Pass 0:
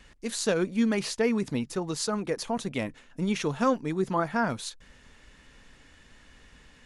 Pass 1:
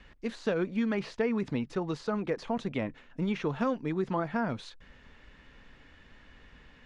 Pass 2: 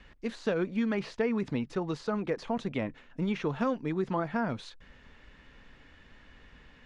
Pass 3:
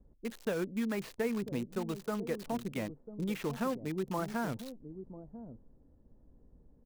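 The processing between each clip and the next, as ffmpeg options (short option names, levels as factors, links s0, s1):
-filter_complex "[0:a]deesser=0.75,lowpass=3300,acrossover=split=700|1900[s0][s1][s2];[s0]acompressor=threshold=0.0447:ratio=4[s3];[s1]acompressor=threshold=0.0141:ratio=4[s4];[s2]acompressor=threshold=0.00631:ratio=4[s5];[s3][s4][s5]amix=inputs=3:normalize=0"
-af anull
-filter_complex "[0:a]acrossover=split=640[s0][s1];[s0]aecho=1:1:995:0.316[s2];[s1]acrusher=bits=6:mix=0:aa=0.000001[s3];[s2][s3]amix=inputs=2:normalize=0,volume=0.596"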